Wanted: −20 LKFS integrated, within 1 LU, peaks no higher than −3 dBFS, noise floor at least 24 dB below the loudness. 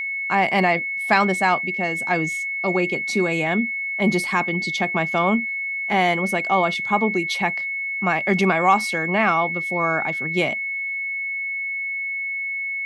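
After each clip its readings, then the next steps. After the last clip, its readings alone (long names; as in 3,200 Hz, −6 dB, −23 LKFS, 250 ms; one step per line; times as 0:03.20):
interfering tone 2,200 Hz; level of the tone −24 dBFS; integrated loudness −21.0 LKFS; sample peak −3.5 dBFS; target loudness −20.0 LKFS
→ notch filter 2,200 Hz, Q 30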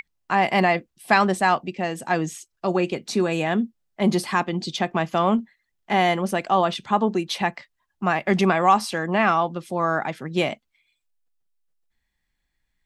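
interfering tone none found; integrated loudness −22.5 LKFS; sample peak −3.0 dBFS; target loudness −20.0 LKFS
→ level +2.5 dB
brickwall limiter −3 dBFS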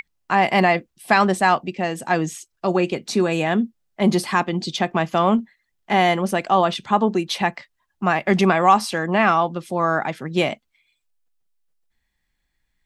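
integrated loudness −20.5 LKFS; sample peak −3.0 dBFS; background noise floor −74 dBFS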